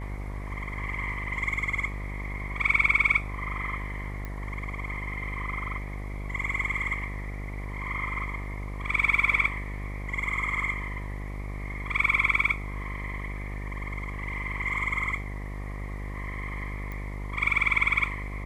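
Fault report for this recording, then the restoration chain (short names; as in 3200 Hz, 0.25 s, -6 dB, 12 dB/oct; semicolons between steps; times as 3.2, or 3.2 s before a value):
buzz 50 Hz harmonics 22 -35 dBFS
4.25 pop -23 dBFS
16.92 pop -25 dBFS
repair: de-click; de-hum 50 Hz, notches 22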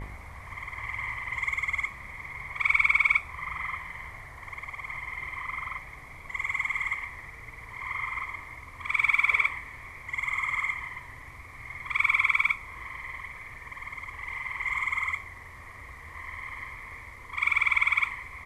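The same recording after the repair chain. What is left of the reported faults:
none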